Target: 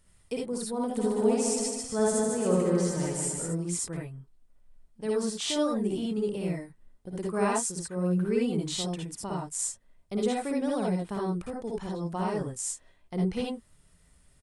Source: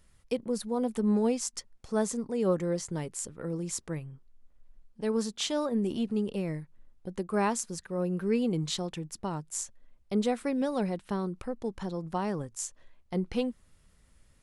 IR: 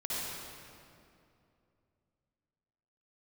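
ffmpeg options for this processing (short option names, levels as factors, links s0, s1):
-filter_complex "[0:a]equalizer=f=8700:t=o:w=0.26:g=8.5,asplit=3[s0][s1][s2];[s0]afade=t=out:st=0.96:d=0.02[s3];[s1]aecho=1:1:150|270|366|442.8|504.2:0.631|0.398|0.251|0.158|0.1,afade=t=in:st=0.96:d=0.02,afade=t=out:st=3.45:d=0.02[s4];[s2]afade=t=in:st=3.45:d=0.02[s5];[s3][s4][s5]amix=inputs=3:normalize=0[s6];[1:a]atrim=start_sample=2205,atrim=end_sample=3969[s7];[s6][s7]afir=irnorm=-1:irlink=0,volume=1.19"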